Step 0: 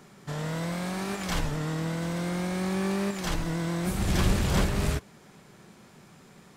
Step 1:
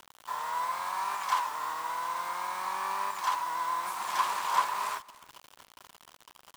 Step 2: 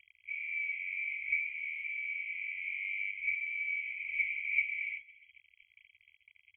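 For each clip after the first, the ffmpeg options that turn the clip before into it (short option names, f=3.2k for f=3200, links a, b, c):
-af "highpass=f=1k:t=q:w=11,acrusher=bits=6:mix=0:aa=0.000001,aecho=1:1:295:0.0794,volume=-5dB"
-af "aecho=1:1:1:0.43,lowpass=f=2.8k:t=q:w=0.5098,lowpass=f=2.8k:t=q:w=0.6013,lowpass=f=2.8k:t=q:w=0.9,lowpass=f=2.8k:t=q:w=2.563,afreqshift=-3300,afftfilt=real='re*(1-between(b*sr/4096,100,2000))':imag='im*(1-between(b*sr/4096,100,2000))':win_size=4096:overlap=0.75,volume=-7dB"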